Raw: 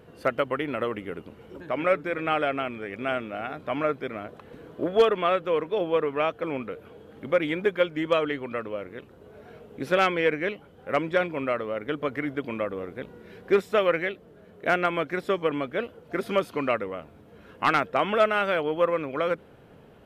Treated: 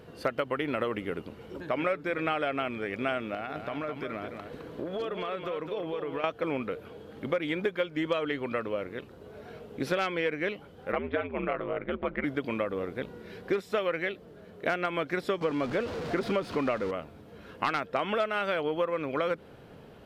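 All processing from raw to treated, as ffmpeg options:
ffmpeg -i in.wav -filter_complex "[0:a]asettb=1/sr,asplit=3[link_01][link_02][link_03];[link_01]atrim=end=3.344[link_04];[link_02]atrim=start=3.34:end=6.24,asetpts=PTS-STARTPTS,afade=type=in:duration=0.004:curve=qsin,afade=type=out:start_time=2.896:duration=0.004:curve=qsin,acompressor=threshold=-32dB:ratio=10:attack=3.2:release=140:knee=1:detection=peak,aecho=1:1:211:0.447,atrim=end_sample=127890[link_05];[link_03]atrim=start=6.236[link_06];[link_04][link_05]acrossfade=duration=0.004:curve1=hsin:curve2=qsin[link_07];[link_07][link_06]acrossfade=duration=0.004:curve1=qsin:curve2=hsin,asettb=1/sr,asplit=3[link_08][link_09][link_10];[link_08]atrim=end=10.924[link_11];[link_09]atrim=start=10.92:end=12.24,asetpts=PTS-STARTPTS,afade=type=in:duration=0.004:curve=qsin,afade=type=out:start_time=1.316:duration=0.004:curve=qsin,lowpass=frequency=3000:width=0.5412,lowpass=frequency=3000:width=1.3066,aeval=exprs='val(0)*sin(2*PI*81*n/s)':channel_layout=same[link_12];[link_10]atrim=start=12.236[link_13];[link_11][link_12]acrossfade=duration=0.004:curve1=hsin:curve2=qsin[link_14];[link_14][link_13]acrossfade=duration=0.004:curve1=qsin:curve2=hsin,asettb=1/sr,asplit=3[link_15][link_16][link_17];[link_15]atrim=end=15.414[link_18];[link_16]atrim=start=15.41:end=16.91,asetpts=PTS-STARTPTS,afade=type=in:duration=0.004:curve=qsin,afade=type=out:start_time=1.496:duration=0.004:curve=qsin,aeval=exprs='val(0)+0.5*0.0237*sgn(val(0))':channel_layout=same,aemphasis=mode=reproduction:type=75fm[link_19];[link_17]atrim=start=16.906[link_20];[link_18][link_19]acrossfade=duration=0.004:curve1=hsin:curve2=qsin[link_21];[link_21][link_20]acrossfade=duration=0.004:curve1=qsin:curve2=hsin,equalizer=frequency=4600:width_type=o:width=0.78:gain=5,acompressor=threshold=-27dB:ratio=6,volume=1.5dB" out.wav

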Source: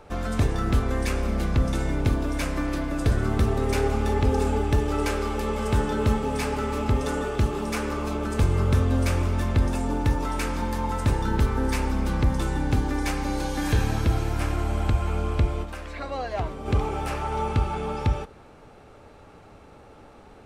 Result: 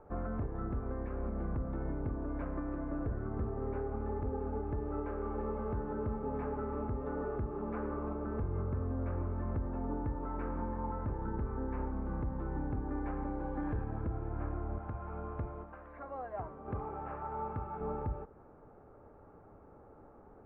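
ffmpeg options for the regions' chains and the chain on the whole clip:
ffmpeg -i in.wav -filter_complex "[0:a]asettb=1/sr,asplit=3[link_01][link_02][link_03];[link_01]atrim=end=14.784[link_04];[link_02]atrim=start=14.78:end=17.81,asetpts=PTS-STARTPTS,afade=type=in:duration=0.004:curve=qsin,afade=type=out:start_time=3.026:duration=0.004:curve=qsin,highpass=frequency=170:poles=1,equalizer=frequency=360:width_type=o:width=1.5:gain=-6[link_05];[link_03]atrim=start=17.806[link_06];[link_04][link_05]acrossfade=duration=0.004:curve1=hsin:curve2=qsin[link_07];[link_07][link_06]acrossfade=duration=0.004:curve1=qsin:curve2=hsin,lowpass=frequency=1400:width=0.5412,lowpass=frequency=1400:width=1.3066,equalizer=frequency=380:width=1.5:gain=2.5,alimiter=limit=-19dB:level=0:latency=1:release=297,volume=-8.5dB" out.wav

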